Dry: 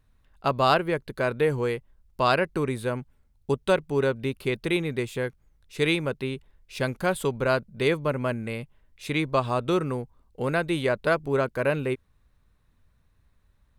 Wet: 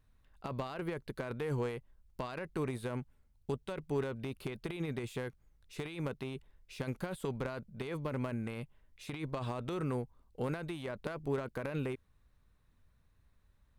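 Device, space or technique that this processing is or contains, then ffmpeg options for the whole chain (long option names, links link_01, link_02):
de-esser from a sidechain: -filter_complex "[0:a]asplit=2[link_01][link_02];[link_02]highpass=frequency=6700:poles=1,apad=whole_len=608081[link_03];[link_01][link_03]sidechaincompress=threshold=-46dB:ratio=12:attack=0.74:release=23,volume=-4.5dB"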